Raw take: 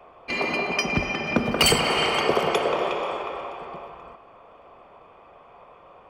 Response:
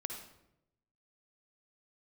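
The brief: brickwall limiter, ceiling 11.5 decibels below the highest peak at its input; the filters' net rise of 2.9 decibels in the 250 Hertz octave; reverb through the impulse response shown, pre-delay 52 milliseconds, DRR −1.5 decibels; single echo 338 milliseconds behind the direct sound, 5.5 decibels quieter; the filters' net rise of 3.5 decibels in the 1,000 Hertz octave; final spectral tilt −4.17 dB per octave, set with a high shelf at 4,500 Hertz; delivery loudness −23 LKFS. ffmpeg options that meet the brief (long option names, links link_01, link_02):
-filter_complex "[0:a]equalizer=frequency=250:width_type=o:gain=3.5,equalizer=frequency=1000:width_type=o:gain=4.5,highshelf=frequency=4500:gain=-3.5,alimiter=limit=-17.5dB:level=0:latency=1,aecho=1:1:338:0.531,asplit=2[link_01][link_02];[1:a]atrim=start_sample=2205,adelay=52[link_03];[link_02][link_03]afir=irnorm=-1:irlink=0,volume=2dB[link_04];[link_01][link_04]amix=inputs=2:normalize=0,volume=-1dB"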